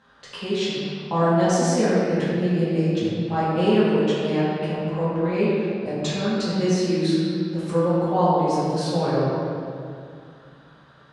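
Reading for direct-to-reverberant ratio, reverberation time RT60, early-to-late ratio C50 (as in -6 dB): -10.5 dB, 2.3 s, -3.5 dB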